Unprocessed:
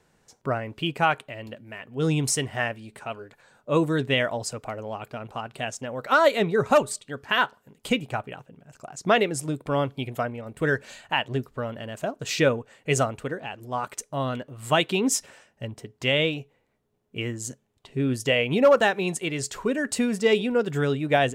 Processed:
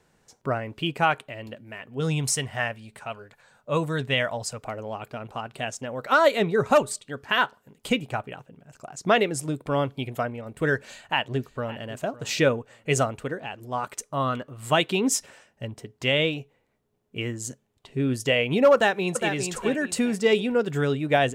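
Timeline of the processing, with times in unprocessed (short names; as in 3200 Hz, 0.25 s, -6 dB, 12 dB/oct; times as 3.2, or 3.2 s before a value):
2–4.62 bell 330 Hz -8.5 dB
10.81–11.83 echo throw 0.56 s, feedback 25%, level -18 dB
14.04–14.54 bell 1200 Hz +11 dB 0.31 oct
18.74–19.33 echo throw 0.41 s, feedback 30%, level -6.5 dB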